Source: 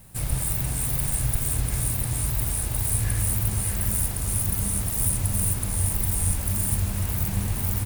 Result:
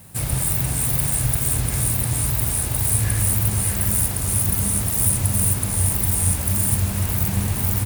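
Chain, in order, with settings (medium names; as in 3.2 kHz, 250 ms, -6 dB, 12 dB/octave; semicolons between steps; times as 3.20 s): high-pass 68 Hz; trim +5.5 dB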